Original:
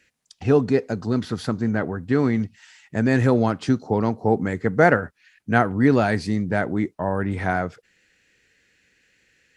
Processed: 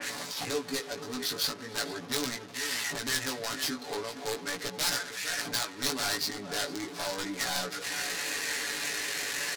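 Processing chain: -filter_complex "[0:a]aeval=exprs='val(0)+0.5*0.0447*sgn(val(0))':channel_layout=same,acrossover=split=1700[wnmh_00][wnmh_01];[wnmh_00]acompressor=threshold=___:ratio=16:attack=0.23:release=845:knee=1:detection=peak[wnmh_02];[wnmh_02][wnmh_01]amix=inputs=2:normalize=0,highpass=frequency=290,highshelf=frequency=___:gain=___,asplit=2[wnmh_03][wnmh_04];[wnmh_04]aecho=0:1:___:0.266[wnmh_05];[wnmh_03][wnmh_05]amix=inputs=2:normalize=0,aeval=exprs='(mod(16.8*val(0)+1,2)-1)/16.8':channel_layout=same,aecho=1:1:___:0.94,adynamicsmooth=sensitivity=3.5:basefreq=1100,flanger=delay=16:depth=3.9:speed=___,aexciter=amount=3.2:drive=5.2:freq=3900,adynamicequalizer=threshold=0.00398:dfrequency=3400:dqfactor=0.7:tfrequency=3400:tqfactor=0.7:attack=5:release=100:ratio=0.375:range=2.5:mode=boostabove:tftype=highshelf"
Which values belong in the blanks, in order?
-25dB, 6900, -5, 457, 7, 0.4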